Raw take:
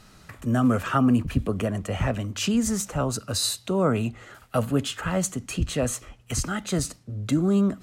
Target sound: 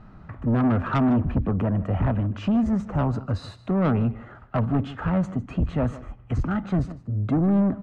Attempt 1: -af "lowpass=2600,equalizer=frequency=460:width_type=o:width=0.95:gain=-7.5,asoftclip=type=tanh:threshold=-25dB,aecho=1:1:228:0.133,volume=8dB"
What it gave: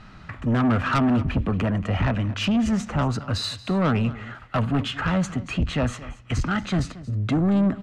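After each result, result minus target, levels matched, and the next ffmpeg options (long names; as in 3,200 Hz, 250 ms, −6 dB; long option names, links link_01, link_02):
echo 75 ms late; 2,000 Hz band +7.5 dB
-af "lowpass=2600,equalizer=frequency=460:width_type=o:width=0.95:gain=-7.5,asoftclip=type=tanh:threshold=-25dB,aecho=1:1:153:0.133,volume=8dB"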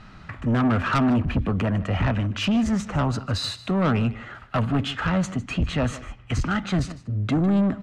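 2,000 Hz band +7.5 dB
-af "lowpass=960,equalizer=frequency=460:width_type=o:width=0.95:gain=-7.5,asoftclip=type=tanh:threshold=-25dB,aecho=1:1:153:0.133,volume=8dB"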